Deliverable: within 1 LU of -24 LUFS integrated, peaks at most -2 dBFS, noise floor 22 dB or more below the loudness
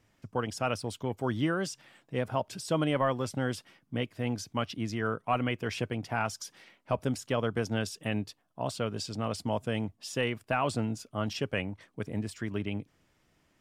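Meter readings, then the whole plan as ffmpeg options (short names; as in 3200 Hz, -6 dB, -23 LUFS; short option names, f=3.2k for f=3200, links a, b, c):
loudness -33.0 LUFS; peak -16.0 dBFS; loudness target -24.0 LUFS
-> -af "volume=9dB"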